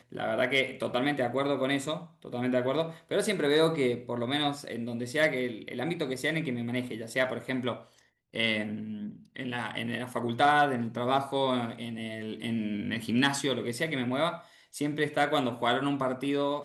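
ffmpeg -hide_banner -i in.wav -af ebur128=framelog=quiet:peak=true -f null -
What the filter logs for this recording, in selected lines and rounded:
Integrated loudness:
  I:         -29.7 LUFS
  Threshold: -39.9 LUFS
Loudness range:
  LRA:         3.6 LU
  Threshold: -50.1 LUFS
  LRA low:   -32.5 LUFS
  LRA high:  -28.9 LUFS
True peak:
  Peak:      -11.3 dBFS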